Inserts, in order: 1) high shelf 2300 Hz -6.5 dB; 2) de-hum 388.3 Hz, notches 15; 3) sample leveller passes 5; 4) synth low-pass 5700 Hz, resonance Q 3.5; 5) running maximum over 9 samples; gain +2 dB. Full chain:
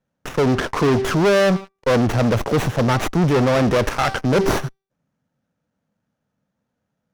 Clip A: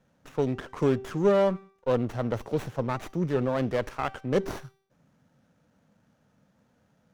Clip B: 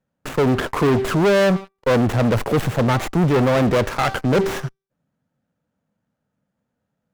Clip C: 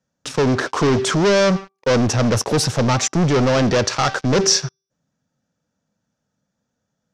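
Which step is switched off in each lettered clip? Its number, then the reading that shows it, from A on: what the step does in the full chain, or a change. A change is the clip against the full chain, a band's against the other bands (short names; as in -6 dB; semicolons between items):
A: 3, 8 kHz band -6.5 dB; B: 4, 8 kHz band -2.0 dB; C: 5, distortion -5 dB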